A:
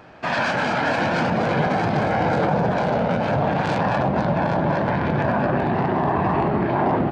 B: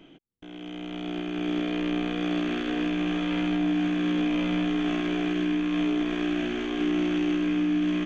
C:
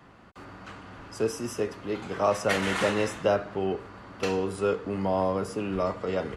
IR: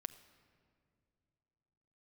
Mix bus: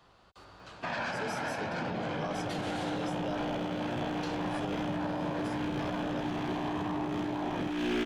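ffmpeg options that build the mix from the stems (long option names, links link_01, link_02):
-filter_complex "[0:a]bandreject=frequency=70.02:width_type=h:width=4,bandreject=frequency=140.04:width_type=h:width=4,bandreject=frequency=210.06:width_type=h:width=4,bandreject=frequency=280.08:width_type=h:width=4,bandreject=frequency=350.1:width_type=h:width=4,bandreject=frequency=420.12:width_type=h:width=4,bandreject=frequency=490.14:width_type=h:width=4,bandreject=frequency=560.16:width_type=h:width=4,bandreject=frequency=630.18:width_type=h:width=4,bandreject=frequency=700.2:width_type=h:width=4,bandreject=frequency=770.22:width_type=h:width=4,bandreject=frequency=840.24:width_type=h:width=4,bandreject=frequency=910.26:width_type=h:width=4,bandreject=frequency=980.28:width_type=h:width=4,bandreject=frequency=1050.3:width_type=h:width=4,bandreject=frequency=1120.32:width_type=h:width=4,bandreject=frequency=1190.34:width_type=h:width=4,bandreject=frequency=1260.36:width_type=h:width=4,bandreject=frequency=1330.38:width_type=h:width=4,bandreject=frequency=1400.4:width_type=h:width=4,bandreject=frequency=1470.42:width_type=h:width=4,bandreject=frequency=1540.44:width_type=h:width=4,bandreject=frequency=1610.46:width_type=h:width=4,bandreject=frequency=1680.48:width_type=h:width=4,bandreject=frequency=1750.5:width_type=h:width=4,bandreject=frequency=1820.52:width_type=h:width=4,bandreject=frequency=1890.54:width_type=h:width=4,bandreject=frequency=1960.56:width_type=h:width=4,bandreject=frequency=2030.58:width_type=h:width=4,bandreject=frequency=2100.6:width_type=h:width=4,adelay=600,volume=-7.5dB[link_01];[1:a]asoftclip=type=hard:threshold=-28.5dB,adelay=1400,volume=2dB[link_02];[2:a]equalizer=frequency=125:width_type=o:width=1:gain=-5,equalizer=frequency=250:width_type=o:width=1:gain=-10,equalizer=frequency=2000:width_type=o:width=1:gain=-7,equalizer=frequency=4000:width_type=o:width=1:gain=8,volume=-5dB[link_03];[link_01][link_02][link_03]amix=inputs=3:normalize=0,alimiter=level_in=1.5dB:limit=-24dB:level=0:latency=1:release=246,volume=-1.5dB"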